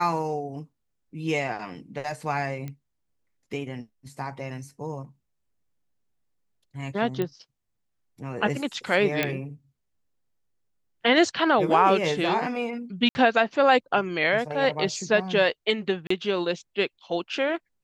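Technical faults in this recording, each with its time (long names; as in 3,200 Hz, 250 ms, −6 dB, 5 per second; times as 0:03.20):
0:02.68: click −23 dBFS
0:07.22: click −16 dBFS
0:09.23: click −9 dBFS
0:13.09–0:13.15: drop-out 60 ms
0:16.07–0:16.10: drop-out 34 ms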